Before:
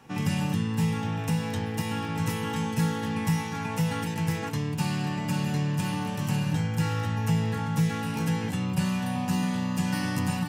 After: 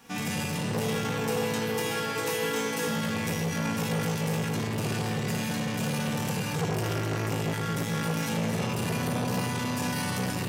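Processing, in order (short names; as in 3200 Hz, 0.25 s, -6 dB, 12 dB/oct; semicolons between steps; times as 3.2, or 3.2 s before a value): spectral whitening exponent 0.6; limiter -19.5 dBFS, peak gain reduction 6.5 dB; 0.74–2.88 resonant high-pass 400 Hz, resonance Q 4.9; analogue delay 0.162 s, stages 1024, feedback 84%, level -8.5 dB; shoebox room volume 1300 m³, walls mixed, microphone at 1.8 m; core saturation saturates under 750 Hz; gain -2 dB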